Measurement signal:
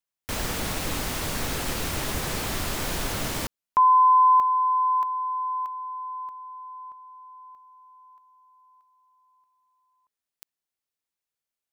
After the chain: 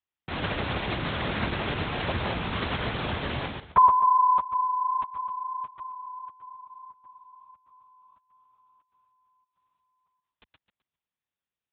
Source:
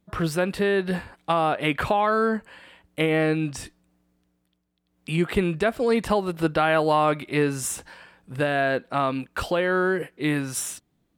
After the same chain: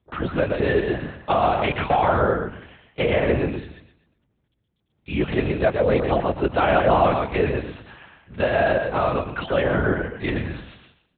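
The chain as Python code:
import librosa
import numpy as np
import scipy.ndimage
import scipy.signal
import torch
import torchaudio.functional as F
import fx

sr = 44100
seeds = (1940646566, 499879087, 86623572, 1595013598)

p1 = x + fx.echo_feedback(x, sr, ms=128, feedback_pct=31, wet_db=-5, dry=0)
p2 = fx.lpc_vocoder(p1, sr, seeds[0], excitation='whisper', order=8)
p3 = scipy.signal.sosfilt(scipy.signal.butter(2, 62.0, 'highpass', fs=sr, output='sos'), p2)
y = fx.dynamic_eq(p3, sr, hz=590.0, q=1.9, threshold_db=-34.0, ratio=4.0, max_db=5)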